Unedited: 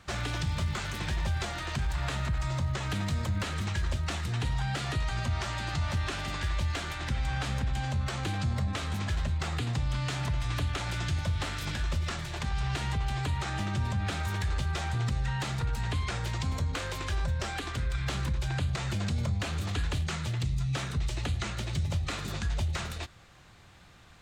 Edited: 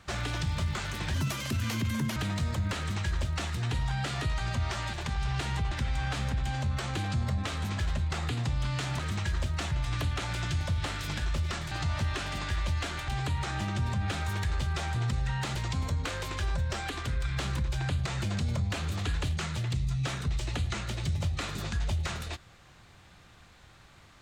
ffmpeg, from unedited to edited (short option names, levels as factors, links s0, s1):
-filter_complex "[0:a]asplit=10[s0][s1][s2][s3][s4][s5][s6][s7][s8][s9];[s0]atrim=end=1.144[s10];[s1]atrim=start=1.14:end=2.87,asetpts=PTS-STARTPTS,asetrate=74529,aresample=44100[s11];[s2]atrim=start=2.866:end=5.642[s12];[s3]atrim=start=12.288:end=13.072[s13];[s4]atrim=start=7.008:end=10.292[s14];[s5]atrim=start=3.488:end=4.212[s15];[s6]atrim=start=10.288:end=12.292[s16];[s7]atrim=start=5.638:end=7.012[s17];[s8]atrim=start=13.068:end=15.542[s18];[s9]atrim=start=16.248[s19];[s10][s11]acrossfade=d=0.004:c1=hsin:c2=hsin[s20];[s20][s12]acrossfade=d=0.004:c1=hsin:c2=hsin[s21];[s21][s13]acrossfade=d=0.004:c1=hsin:c2=hsin[s22];[s22][s14]acrossfade=d=0.004:c1=hsin:c2=hsin[s23];[s23][s15]acrossfade=d=0.004:c1=hsin:c2=hsin[s24];[s24][s16]acrossfade=d=0.004:c1=hsin:c2=hsin[s25];[s25][s17]acrossfade=d=0.004:c1=hsin:c2=hsin[s26];[s26][s18]acrossfade=d=0.004:c1=hsin:c2=hsin[s27];[s27][s19]acrossfade=d=0.004:c1=hsin:c2=hsin"